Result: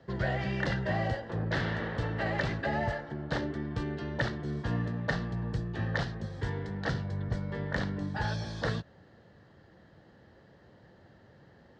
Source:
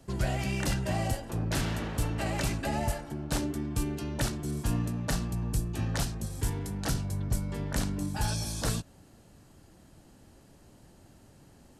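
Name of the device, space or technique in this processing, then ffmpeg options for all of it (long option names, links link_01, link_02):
guitar cabinet: -af "highpass=83,equalizer=frequency=270:width_type=q:width=4:gain=-6,equalizer=frequency=500:width_type=q:width=4:gain=6,equalizer=frequency=1800:width_type=q:width=4:gain=10,equalizer=frequency=2500:width_type=q:width=4:gain=-9,lowpass=frequency=4100:width=0.5412,lowpass=frequency=4100:width=1.3066"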